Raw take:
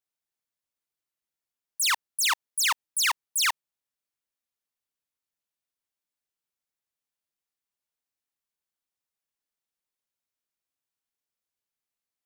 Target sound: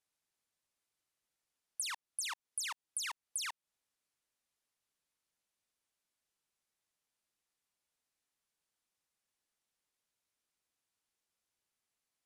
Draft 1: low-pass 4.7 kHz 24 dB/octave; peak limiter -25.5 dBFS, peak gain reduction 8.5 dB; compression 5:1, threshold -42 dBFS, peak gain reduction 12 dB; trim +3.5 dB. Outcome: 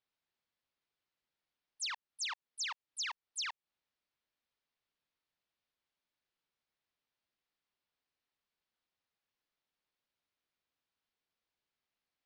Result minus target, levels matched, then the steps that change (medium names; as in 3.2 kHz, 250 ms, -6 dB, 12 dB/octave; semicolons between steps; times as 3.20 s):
8 kHz band -3.5 dB
change: low-pass 12 kHz 24 dB/octave